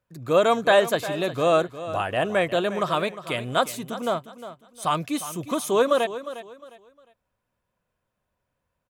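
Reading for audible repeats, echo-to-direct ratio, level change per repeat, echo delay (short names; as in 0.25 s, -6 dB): 2, -13.0 dB, -11.0 dB, 0.356 s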